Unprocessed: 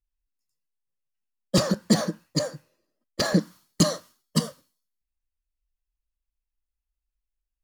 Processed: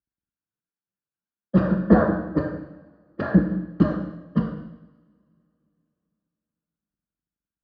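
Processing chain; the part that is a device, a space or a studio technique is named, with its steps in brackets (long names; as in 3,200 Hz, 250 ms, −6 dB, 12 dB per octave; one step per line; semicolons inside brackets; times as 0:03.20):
0:01.83–0:02.40: flat-topped bell 770 Hz +9.5 dB 2.5 octaves
coupled-rooms reverb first 0.91 s, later 3.3 s, from −27 dB, DRR 2.5 dB
sub-octave bass pedal (sub-octave generator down 2 octaves, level −2 dB; loudspeaker in its box 67–2,200 Hz, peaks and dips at 190 Hz +9 dB, 300 Hz +9 dB, 1,500 Hz +8 dB, 2,100 Hz −9 dB)
level −3.5 dB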